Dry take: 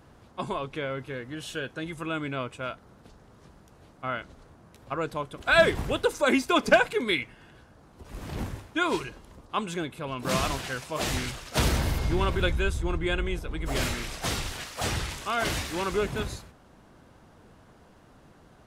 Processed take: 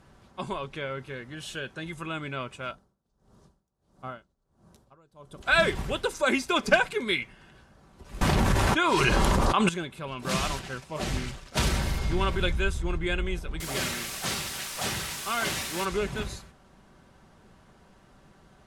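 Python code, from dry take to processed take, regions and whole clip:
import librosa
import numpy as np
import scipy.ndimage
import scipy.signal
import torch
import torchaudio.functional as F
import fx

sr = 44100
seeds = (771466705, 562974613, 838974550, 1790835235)

y = fx.chain(x, sr, fx.peak_eq(hz=2200.0, db=-11.5, octaves=1.3),
    fx.tremolo_db(hz=1.5, depth_db=26), at=(2.71, 5.43))
y = fx.chain(y, sr, fx.peak_eq(hz=920.0, db=4.0, octaves=1.5),
    fx.env_flatten(amount_pct=100), at=(8.21, 9.69))
y = fx.chain(y, sr, fx.law_mismatch(coded='A'),
    fx.tilt_shelf(db=4.0, hz=810.0),
    fx.doppler_dist(depth_ms=0.33), at=(10.59, 11.57))
y = fx.chain(y, sr, fx.highpass(hz=110.0, slope=12),
    fx.quant_dither(seeds[0], bits=6, dither='triangular'), at=(13.6, 15.85))
y = scipy.signal.sosfilt(scipy.signal.butter(2, 12000.0, 'lowpass', fs=sr, output='sos'), y)
y = fx.peak_eq(y, sr, hz=420.0, db=-3.5, octaves=2.7)
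y = y + 0.33 * np.pad(y, (int(5.2 * sr / 1000.0), 0))[:len(y)]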